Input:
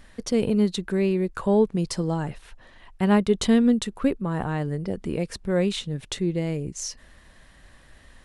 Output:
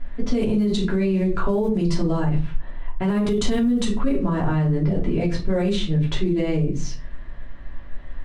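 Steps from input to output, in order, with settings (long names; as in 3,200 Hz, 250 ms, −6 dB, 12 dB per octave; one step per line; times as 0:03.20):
one scale factor per block 7 bits
low-pass that shuts in the quiet parts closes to 2,100 Hz, open at −15.5 dBFS
rectangular room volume 190 cubic metres, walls furnished, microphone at 3 metres
brickwall limiter −15 dBFS, peak gain reduction 15 dB
low-shelf EQ 73 Hz +7.5 dB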